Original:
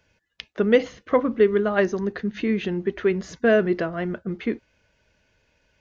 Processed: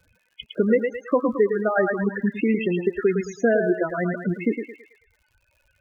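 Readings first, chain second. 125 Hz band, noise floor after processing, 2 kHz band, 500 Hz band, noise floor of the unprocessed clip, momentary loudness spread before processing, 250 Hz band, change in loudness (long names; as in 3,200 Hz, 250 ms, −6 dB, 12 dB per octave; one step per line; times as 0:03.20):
+1.0 dB, −69 dBFS, +0.5 dB, −0.5 dB, −70 dBFS, 10 LU, +1.0 dB, 0.0 dB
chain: reverb reduction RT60 1.6 s
downward compressor 3 to 1, threshold −24 dBFS, peak gain reduction 9.5 dB
feedback echo with a high-pass in the loop 109 ms, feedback 52%, high-pass 490 Hz, level −3 dB
spectral peaks only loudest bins 16
surface crackle 100 per second −57 dBFS
level +6 dB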